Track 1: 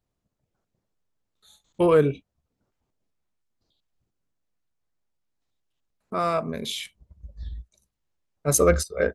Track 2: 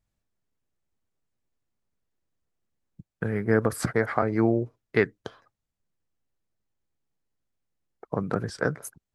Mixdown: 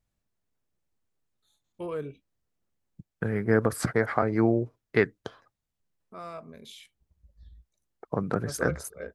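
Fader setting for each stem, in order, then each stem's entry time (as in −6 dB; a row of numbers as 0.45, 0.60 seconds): −16.0, −0.5 decibels; 0.00, 0.00 seconds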